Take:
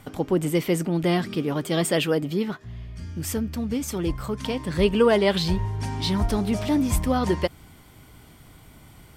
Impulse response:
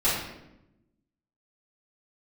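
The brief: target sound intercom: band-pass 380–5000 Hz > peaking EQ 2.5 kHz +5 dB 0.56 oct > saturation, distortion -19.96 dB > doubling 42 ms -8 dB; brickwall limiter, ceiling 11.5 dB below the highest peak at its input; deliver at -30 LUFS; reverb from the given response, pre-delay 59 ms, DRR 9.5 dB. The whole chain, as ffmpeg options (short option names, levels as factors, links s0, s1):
-filter_complex "[0:a]alimiter=limit=0.106:level=0:latency=1,asplit=2[s0][s1];[1:a]atrim=start_sample=2205,adelay=59[s2];[s1][s2]afir=irnorm=-1:irlink=0,volume=0.0708[s3];[s0][s3]amix=inputs=2:normalize=0,highpass=380,lowpass=5000,equalizer=f=2500:t=o:w=0.56:g=5,asoftclip=threshold=0.0891,asplit=2[s4][s5];[s5]adelay=42,volume=0.398[s6];[s4][s6]amix=inputs=2:normalize=0,volume=1.33"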